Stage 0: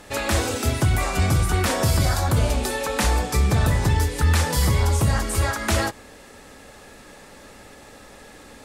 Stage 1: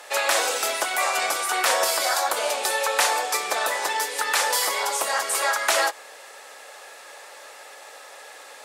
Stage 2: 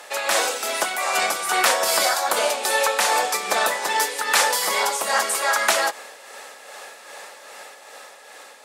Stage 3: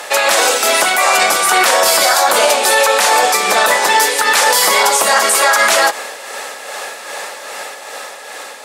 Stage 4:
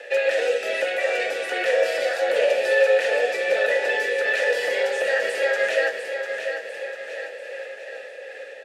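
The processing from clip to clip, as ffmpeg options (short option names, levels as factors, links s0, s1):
-af "highpass=f=540:w=0.5412,highpass=f=540:w=1.3066,volume=1.58"
-af "tremolo=f=2.5:d=0.46,dynaudnorm=f=220:g=11:m=1.41,equalizer=f=200:w=2.6:g=12,volume=1.26"
-af "alimiter=level_in=5.31:limit=0.891:release=50:level=0:latency=1,volume=0.891"
-filter_complex "[0:a]asplit=3[s0][s1][s2];[s0]bandpass=f=530:t=q:w=8,volume=1[s3];[s1]bandpass=f=1840:t=q:w=8,volume=0.501[s4];[s2]bandpass=f=2480:t=q:w=8,volume=0.355[s5];[s3][s4][s5]amix=inputs=3:normalize=0,afreqshift=-14,asplit=2[s6][s7];[s7]aecho=0:1:697|1394|2091|2788|3485|4182:0.422|0.202|0.0972|0.0466|0.0224|0.0107[s8];[s6][s8]amix=inputs=2:normalize=0"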